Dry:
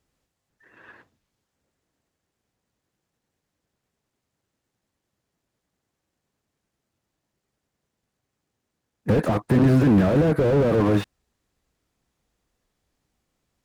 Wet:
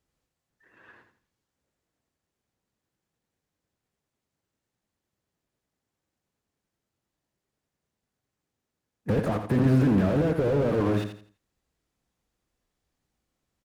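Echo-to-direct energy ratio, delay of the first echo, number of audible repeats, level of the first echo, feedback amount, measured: −7.5 dB, 84 ms, 3, −8.0 dB, 30%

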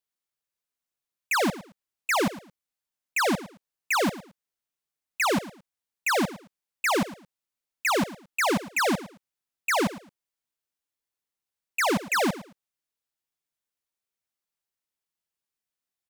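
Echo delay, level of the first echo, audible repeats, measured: 110 ms, −16.0 dB, 2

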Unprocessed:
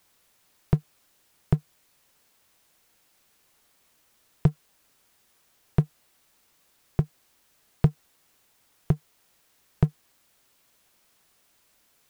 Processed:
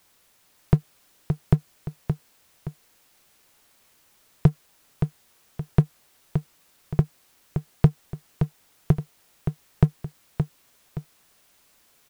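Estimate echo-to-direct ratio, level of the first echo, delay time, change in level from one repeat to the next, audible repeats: −6.5 dB, −7.0 dB, 571 ms, −8.0 dB, 2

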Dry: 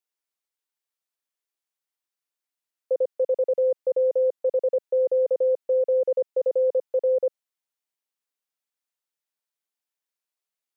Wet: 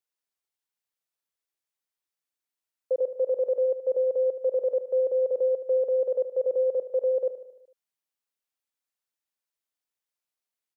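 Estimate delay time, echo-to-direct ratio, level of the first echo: 75 ms, −10.5 dB, −12.0 dB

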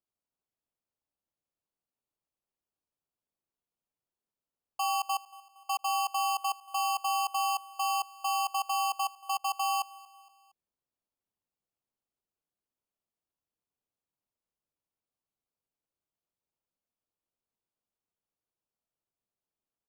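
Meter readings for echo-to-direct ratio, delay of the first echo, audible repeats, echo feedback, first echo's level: −20.5 dB, 232 ms, 3, 49%, −21.5 dB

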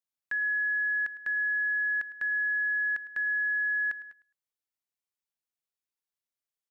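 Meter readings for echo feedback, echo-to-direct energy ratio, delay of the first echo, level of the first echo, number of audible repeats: 24%, −17.0 dB, 106 ms, −17.0 dB, 2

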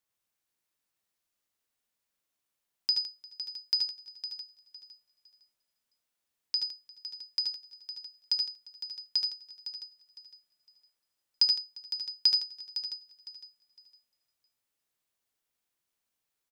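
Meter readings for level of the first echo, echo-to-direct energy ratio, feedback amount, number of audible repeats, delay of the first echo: −6.0 dB, −2.0 dB, repeats not evenly spaced, 8, 75 ms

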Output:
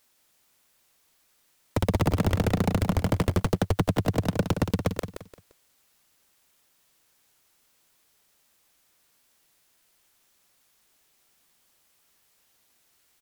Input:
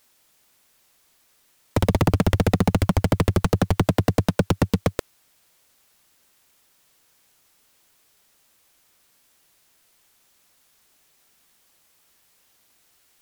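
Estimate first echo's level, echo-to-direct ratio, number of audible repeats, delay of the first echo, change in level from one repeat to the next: −8.5 dB, −8.0 dB, 3, 173 ms, −11.0 dB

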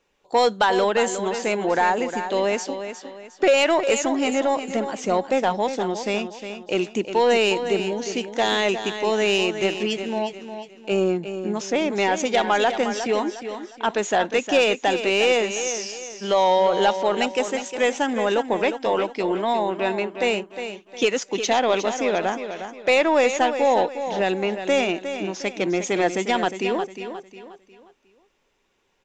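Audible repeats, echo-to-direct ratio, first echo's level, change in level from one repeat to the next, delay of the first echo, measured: 3, −9.0 dB, −9.5 dB, −9.0 dB, 358 ms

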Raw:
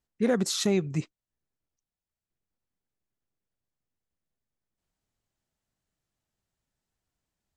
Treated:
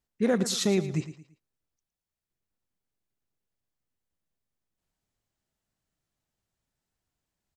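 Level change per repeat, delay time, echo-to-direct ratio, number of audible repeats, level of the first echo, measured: −9.5 dB, 113 ms, −12.5 dB, 3, −13.0 dB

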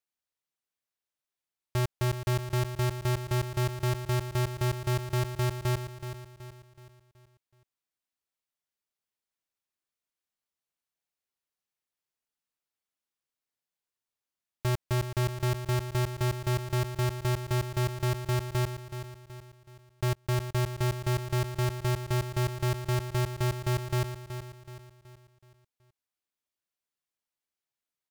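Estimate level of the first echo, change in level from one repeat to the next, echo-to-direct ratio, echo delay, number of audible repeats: −10.0 dB, −7.0 dB, −9.0 dB, 375 ms, 4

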